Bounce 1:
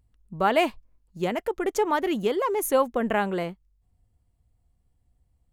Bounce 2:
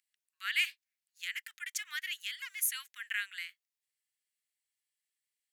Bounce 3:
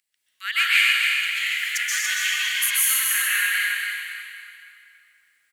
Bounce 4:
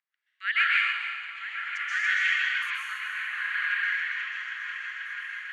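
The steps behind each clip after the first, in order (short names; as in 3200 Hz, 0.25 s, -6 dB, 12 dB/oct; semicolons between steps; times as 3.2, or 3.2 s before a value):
steep high-pass 1700 Hz 48 dB/oct
feedback echo 0.283 s, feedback 29%, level -6 dB; plate-style reverb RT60 2.6 s, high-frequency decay 0.8×, pre-delay 0.115 s, DRR -8.5 dB; gain +7 dB
wah 0.55 Hz 670–1800 Hz, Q 2.3; air absorption 58 m; repeats that get brighter 0.487 s, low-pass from 750 Hz, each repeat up 1 oct, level -3 dB; gain +2.5 dB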